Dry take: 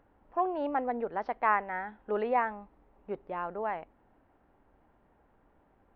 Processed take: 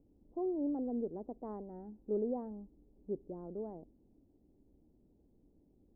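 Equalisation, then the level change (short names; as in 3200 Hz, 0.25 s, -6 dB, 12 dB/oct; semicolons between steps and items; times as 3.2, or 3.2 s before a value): ladder low-pass 420 Hz, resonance 30%; +6.0 dB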